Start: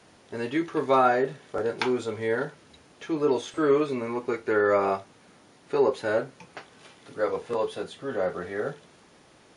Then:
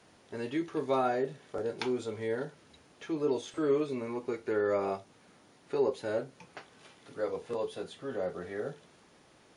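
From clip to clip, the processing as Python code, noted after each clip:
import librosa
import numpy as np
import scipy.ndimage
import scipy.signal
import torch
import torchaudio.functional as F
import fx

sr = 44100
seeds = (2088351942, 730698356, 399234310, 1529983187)

y = fx.dynamic_eq(x, sr, hz=1400.0, q=0.77, threshold_db=-39.0, ratio=4.0, max_db=-7)
y = y * librosa.db_to_amplitude(-5.0)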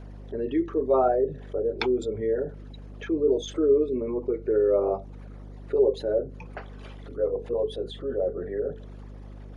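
y = fx.envelope_sharpen(x, sr, power=2.0)
y = fx.add_hum(y, sr, base_hz=50, snr_db=15)
y = y * librosa.db_to_amplitude(7.5)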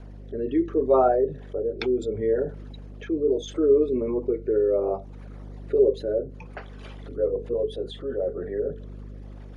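y = fx.rotary(x, sr, hz=0.7)
y = y * librosa.db_to_amplitude(3.0)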